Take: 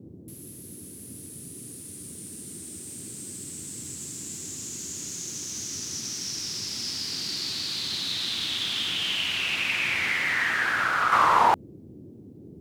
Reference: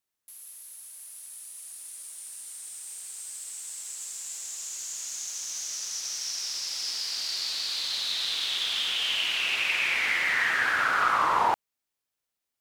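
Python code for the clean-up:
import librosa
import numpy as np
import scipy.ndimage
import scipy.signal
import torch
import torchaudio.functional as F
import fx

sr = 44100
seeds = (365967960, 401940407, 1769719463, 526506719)

y = fx.noise_reduce(x, sr, print_start_s=12.07, print_end_s=12.57, reduce_db=30.0)
y = fx.fix_level(y, sr, at_s=11.12, step_db=-4.5)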